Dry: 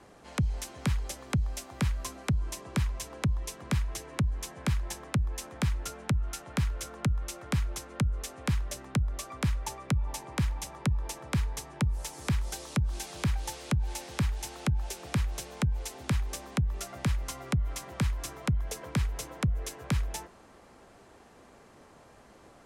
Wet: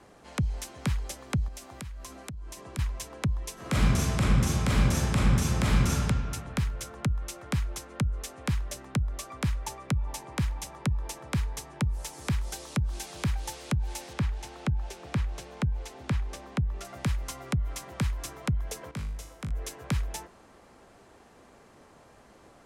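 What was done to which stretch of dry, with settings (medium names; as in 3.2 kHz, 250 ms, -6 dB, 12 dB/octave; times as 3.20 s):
1.48–2.79 s: compression 5:1, threshold -38 dBFS
3.53–5.89 s: reverb throw, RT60 2.1 s, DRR -8 dB
14.13–16.85 s: low-pass 3.1 kHz 6 dB/octave
18.91–19.51 s: feedback comb 51 Hz, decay 0.58 s, mix 80%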